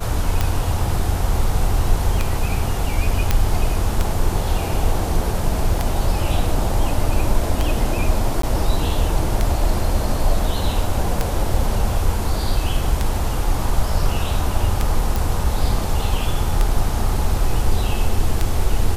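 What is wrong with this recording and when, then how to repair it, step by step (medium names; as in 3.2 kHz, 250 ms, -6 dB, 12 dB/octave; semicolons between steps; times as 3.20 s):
tick 33 1/3 rpm -5 dBFS
3.31 s: pop -2 dBFS
8.42–8.43 s: dropout 13 ms
15.16 s: pop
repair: de-click; interpolate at 8.42 s, 13 ms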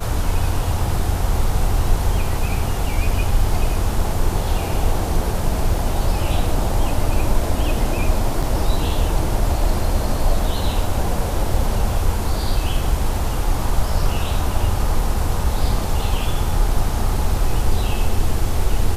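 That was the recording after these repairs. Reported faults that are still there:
nothing left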